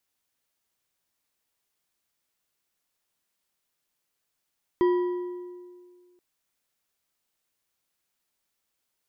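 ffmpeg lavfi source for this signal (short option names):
-f lavfi -i "aevalsrc='0.141*pow(10,-3*t/1.93)*sin(2*PI*357*t)+0.0422*pow(10,-3*t/1.424)*sin(2*PI*984.2*t)+0.0126*pow(10,-3*t/1.163)*sin(2*PI*1929.2*t)+0.00376*pow(10,-3*t/1.001)*sin(2*PI*3189.1*t)+0.00112*pow(10,-3*t/0.887)*sin(2*PI*4762.4*t)':d=1.38:s=44100"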